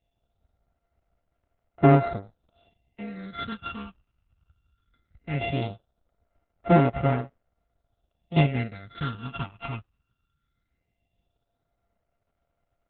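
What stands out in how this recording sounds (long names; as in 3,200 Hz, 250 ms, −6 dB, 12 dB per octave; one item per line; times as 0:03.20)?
a buzz of ramps at a fixed pitch in blocks of 64 samples
phaser sweep stages 8, 0.18 Hz, lowest notch 530–4,100 Hz
Opus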